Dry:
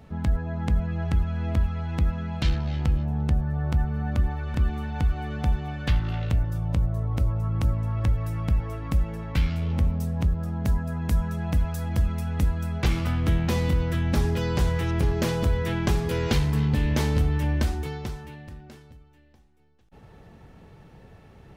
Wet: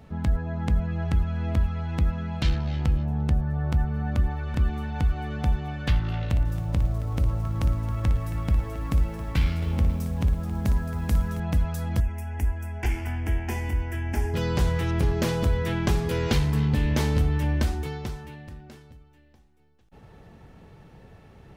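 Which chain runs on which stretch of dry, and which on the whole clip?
0:06.18–0:11.40: flutter between parallel walls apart 10 metres, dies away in 0.35 s + feedback echo at a low word length 271 ms, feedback 55%, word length 7 bits, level −14.5 dB
0:12.00–0:14.34: parametric band 290 Hz −6 dB 0.45 octaves + phaser with its sweep stopped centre 800 Hz, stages 8
whole clip: no processing

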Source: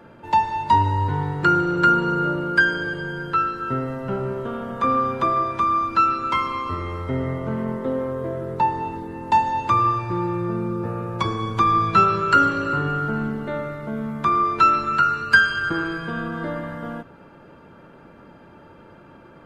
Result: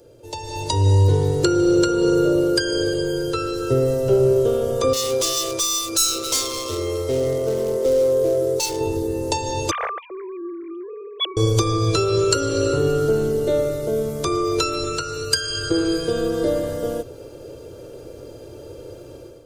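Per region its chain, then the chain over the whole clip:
0:04.93–0:08.81: high-pass filter 330 Hz 6 dB per octave + hard clipping −25.5 dBFS
0:09.71–0:11.37: three sine waves on the formant tracks + parametric band 280 Hz −11.5 dB 1.6 octaves
whole clip: downward compressor 5 to 1, threshold −19 dBFS; drawn EQ curve 120 Hz 0 dB, 190 Hz −21 dB, 330 Hz −2 dB, 480 Hz +5 dB, 890 Hz −17 dB, 1,800 Hz −18 dB, 6,000 Hz +12 dB; automatic gain control gain up to 11.5 dB

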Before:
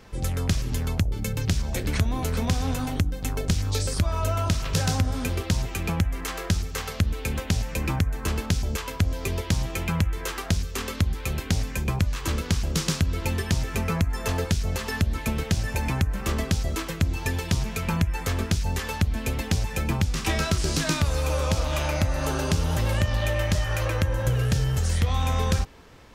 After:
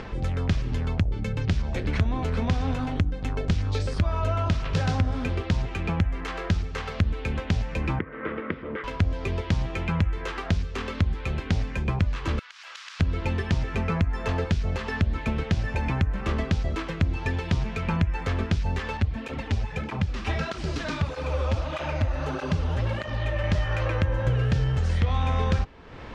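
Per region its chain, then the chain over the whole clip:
0:07.99–0:08.84: lower of the sound and its delayed copy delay 0.58 ms + loudspeaker in its box 240–2,400 Hz, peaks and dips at 310 Hz +4 dB, 500 Hz +9 dB, 730 Hz −8 dB, 1,200 Hz +4 dB, 2,000 Hz +5 dB + notch filter 1,700 Hz, Q 13
0:12.39–0:13.00: high-pass filter 1,200 Hz 24 dB per octave + downward compressor 5 to 1, threshold −41 dBFS
0:18.97–0:23.44: single-tap delay 324 ms −19 dB + through-zero flanger with one copy inverted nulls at 1.6 Hz, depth 7.6 ms
whole clip: upward compression, threshold −27 dBFS; low-pass filter 3,100 Hz 12 dB per octave

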